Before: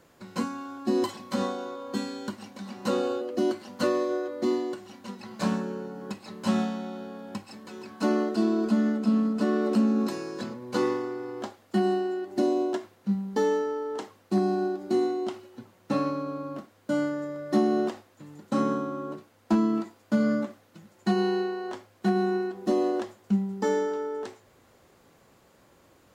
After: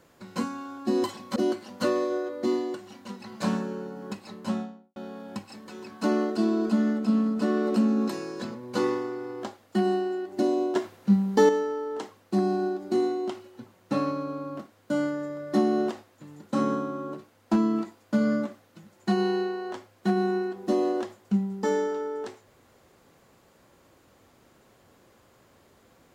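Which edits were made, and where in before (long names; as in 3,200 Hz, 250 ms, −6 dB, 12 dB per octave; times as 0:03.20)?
0:01.36–0:03.35: remove
0:06.21–0:06.95: fade out and dull
0:12.75–0:13.48: clip gain +6.5 dB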